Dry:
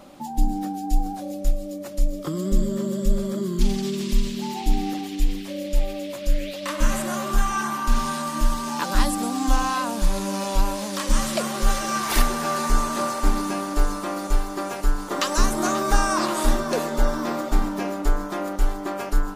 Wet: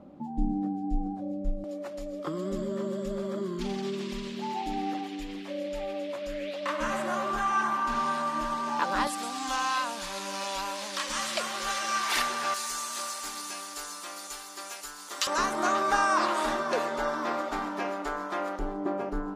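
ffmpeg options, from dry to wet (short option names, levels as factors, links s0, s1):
-af "asetnsamples=n=441:p=0,asendcmd='1.64 bandpass f 980;9.07 bandpass f 2600;12.54 bandpass f 6700;15.27 bandpass f 1400;18.59 bandpass f 340',bandpass=f=170:t=q:w=0.55:csg=0"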